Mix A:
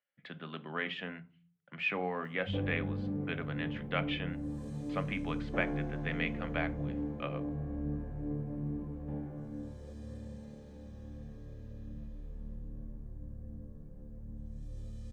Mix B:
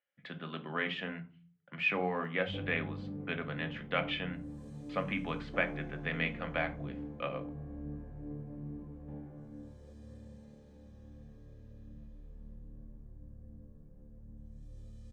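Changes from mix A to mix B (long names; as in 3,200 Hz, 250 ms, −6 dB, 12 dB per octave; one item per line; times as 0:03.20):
speech: send +6.0 dB
background −6.0 dB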